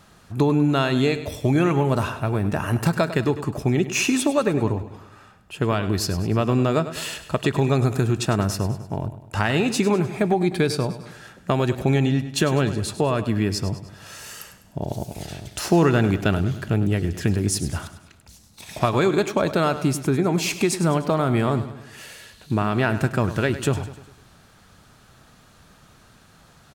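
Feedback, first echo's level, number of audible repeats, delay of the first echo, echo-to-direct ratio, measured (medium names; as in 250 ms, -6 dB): 50%, -13.0 dB, 4, 101 ms, -11.5 dB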